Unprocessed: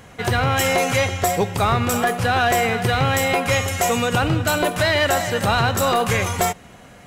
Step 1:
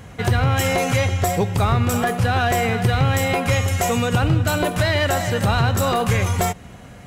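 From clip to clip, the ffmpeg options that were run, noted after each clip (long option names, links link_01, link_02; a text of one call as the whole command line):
ffmpeg -i in.wav -af "equalizer=frequency=73:width=0.4:gain=9,acompressor=threshold=-20dB:ratio=1.5" out.wav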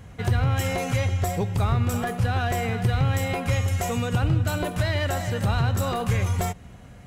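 ffmpeg -i in.wav -af "lowshelf=frequency=130:gain=8,volume=-8dB" out.wav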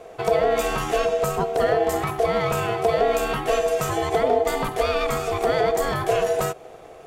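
ffmpeg -i in.wav -af "aeval=exprs='val(0)*sin(2*PI*570*n/s)':channel_layout=same,volume=4.5dB" out.wav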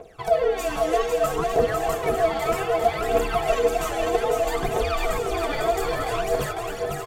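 ffmpeg -i in.wav -filter_complex "[0:a]aphaser=in_gain=1:out_gain=1:delay=3.6:decay=0.78:speed=0.63:type=triangular,asplit=2[link_01][link_02];[link_02]aecho=0:1:500|900|1220|1476|1681:0.631|0.398|0.251|0.158|0.1[link_03];[link_01][link_03]amix=inputs=2:normalize=0,volume=-7.5dB" out.wav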